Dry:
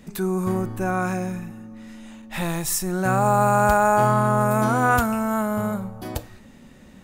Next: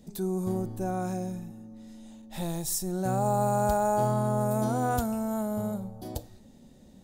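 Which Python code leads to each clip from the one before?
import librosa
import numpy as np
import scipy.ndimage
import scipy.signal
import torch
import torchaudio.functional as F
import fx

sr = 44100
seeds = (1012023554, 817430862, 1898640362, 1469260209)

y = fx.band_shelf(x, sr, hz=1700.0, db=-11.5, octaves=1.7)
y = y * 10.0 ** (-6.0 / 20.0)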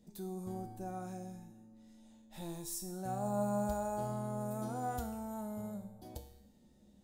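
y = fx.comb_fb(x, sr, f0_hz=68.0, decay_s=0.78, harmonics='odd', damping=0.0, mix_pct=80)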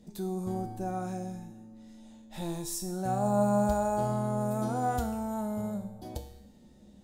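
y = fx.high_shelf(x, sr, hz=11000.0, db=-9.0)
y = y * 10.0 ** (8.5 / 20.0)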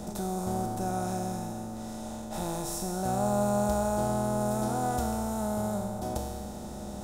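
y = fx.bin_compress(x, sr, power=0.4)
y = y * 10.0 ** (-3.0 / 20.0)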